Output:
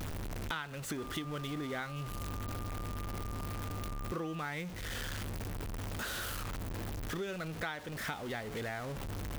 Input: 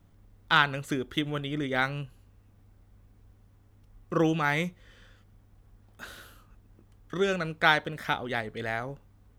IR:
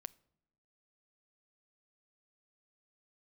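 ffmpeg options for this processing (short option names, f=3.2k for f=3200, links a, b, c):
-filter_complex "[0:a]aeval=exprs='val(0)+0.5*0.0299*sgn(val(0))':c=same,acompressor=threshold=-34dB:ratio=6,asettb=1/sr,asplit=3[a][b][c];[a]atrim=end=0.984[d];[b]atrim=start=0.98:end=4.45,asetpts=PTS-STARTPTS,afade=t=in:d=0.004:c=qsin,afade=t=out:st=3.466:d=0.004:c=qsin,aeval=exprs='val(0)+0.00562*sin(2*PI*1200*n/s)':c=same[e];[c]atrim=start=4.446[f];[d][e]acrossfade=d=0.004:c1=hsin:c2=qsin[g];[g][f]acrossfade=d=0.004:c1=qsin:c2=hsin,volume=-2.5dB"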